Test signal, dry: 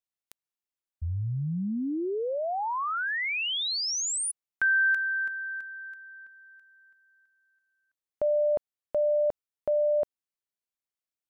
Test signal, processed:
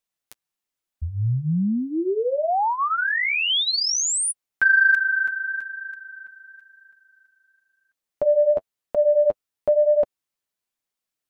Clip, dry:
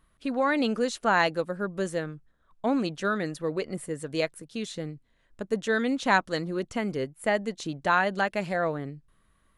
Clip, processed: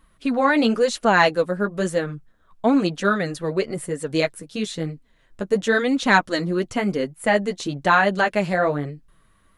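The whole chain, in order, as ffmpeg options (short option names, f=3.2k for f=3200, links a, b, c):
-af "flanger=delay=3.5:depth=8.2:regen=-17:speed=1:shape=triangular,acontrast=76,volume=3.5dB"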